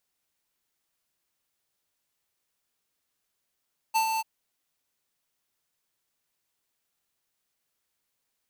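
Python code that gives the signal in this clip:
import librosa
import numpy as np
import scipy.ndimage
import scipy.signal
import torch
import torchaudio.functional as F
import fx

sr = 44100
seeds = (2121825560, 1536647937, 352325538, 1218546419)

y = fx.adsr_tone(sr, wave='square', hz=889.0, attack_ms=20.0, decay_ms=98.0, sustain_db=-5.5, held_s=0.26, release_ms=29.0, level_db=-22.5)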